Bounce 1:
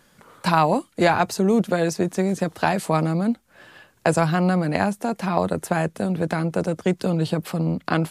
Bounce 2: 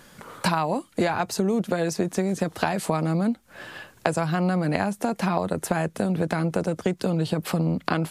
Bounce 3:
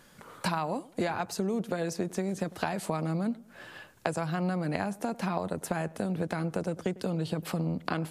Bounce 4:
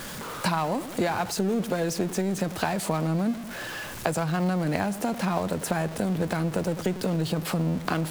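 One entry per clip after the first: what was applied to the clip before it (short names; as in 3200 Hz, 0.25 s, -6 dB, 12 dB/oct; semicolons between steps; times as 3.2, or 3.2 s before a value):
compressor 6:1, threshold -28 dBFS, peak gain reduction 15 dB; gain +7 dB
darkening echo 0.1 s, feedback 38%, low-pass 1500 Hz, level -19.5 dB; gain -7 dB
zero-crossing step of -35.5 dBFS; gain +3 dB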